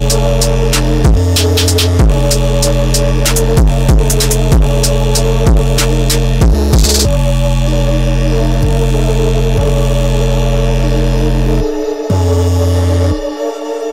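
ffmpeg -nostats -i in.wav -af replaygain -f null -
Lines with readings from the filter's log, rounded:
track_gain = -4.1 dB
track_peak = 0.540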